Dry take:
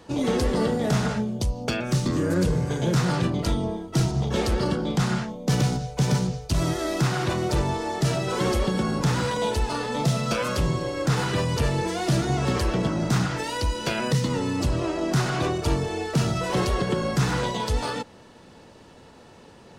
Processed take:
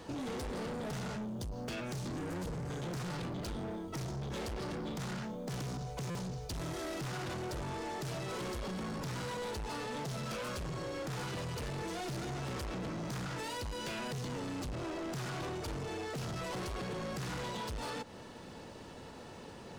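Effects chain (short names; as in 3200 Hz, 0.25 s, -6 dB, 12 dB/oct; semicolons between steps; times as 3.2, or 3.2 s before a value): short-mantissa float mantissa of 4-bit; soft clip -31 dBFS, distortion -6 dB; compressor 5:1, threshold -39 dBFS, peak gain reduction 6.5 dB; stuck buffer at 6.1, samples 256, times 8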